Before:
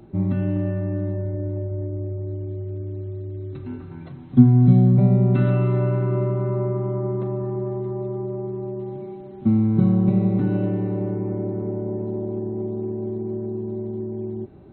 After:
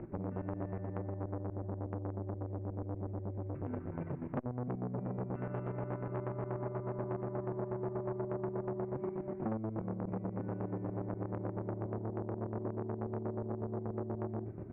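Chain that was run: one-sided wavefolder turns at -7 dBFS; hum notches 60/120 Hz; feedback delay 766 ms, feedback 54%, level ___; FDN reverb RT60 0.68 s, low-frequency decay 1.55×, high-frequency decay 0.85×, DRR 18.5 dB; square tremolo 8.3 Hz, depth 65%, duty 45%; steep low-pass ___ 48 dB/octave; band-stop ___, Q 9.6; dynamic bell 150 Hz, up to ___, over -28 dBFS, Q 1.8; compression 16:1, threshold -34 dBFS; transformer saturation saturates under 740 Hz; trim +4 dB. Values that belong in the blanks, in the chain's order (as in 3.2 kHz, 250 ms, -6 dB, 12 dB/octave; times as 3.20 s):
-23 dB, 2.3 kHz, 800 Hz, -3 dB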